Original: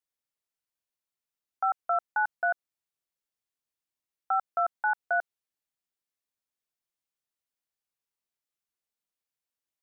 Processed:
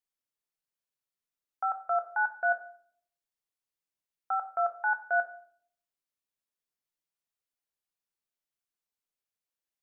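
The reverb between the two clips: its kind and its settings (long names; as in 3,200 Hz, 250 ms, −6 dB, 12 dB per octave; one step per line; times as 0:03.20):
rectangular room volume 86 cubic metres, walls mixed, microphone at 0.33 metres
level −3.5 dB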